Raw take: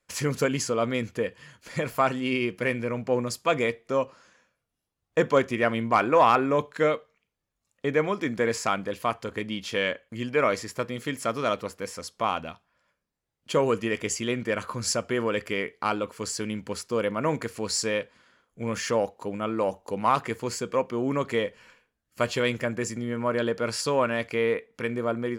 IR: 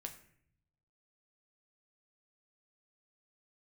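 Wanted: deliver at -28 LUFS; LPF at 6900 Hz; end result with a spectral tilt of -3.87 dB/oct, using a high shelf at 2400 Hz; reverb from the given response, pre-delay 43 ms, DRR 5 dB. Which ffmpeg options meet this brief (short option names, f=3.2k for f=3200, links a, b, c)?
-filter_complex "[0:a]lowpass=6.9k,highshelf=f=2.4k:g=6.5,asplit=2[a][b];[1:a]atrim=start_sample=2205,adelay=43[c];[b][c]afir=irnorm=-1:irlink=0,volume=-1.5dB[d];[a][d]amix=inputs=2:normalize=0,volume=-3dB"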